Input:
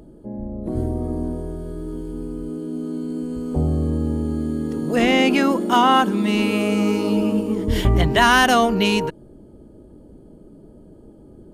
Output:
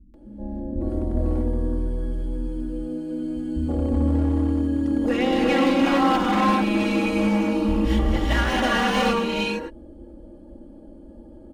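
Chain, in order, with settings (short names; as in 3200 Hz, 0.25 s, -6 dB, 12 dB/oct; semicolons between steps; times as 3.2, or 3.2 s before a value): LPF 3200 Hz 6 dB/oct; limiter -10.5 dBFS, peak gain reduction 6 dB; non-linear reverb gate 0.47 s rising, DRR -3.5 dB; hard clip -12.5 dBFS, distortion -13 dB; comb 3.6 ms, depth 95%; bands offset in time lows, highs 0.14 s, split 200 Hz; gain -5.5 dB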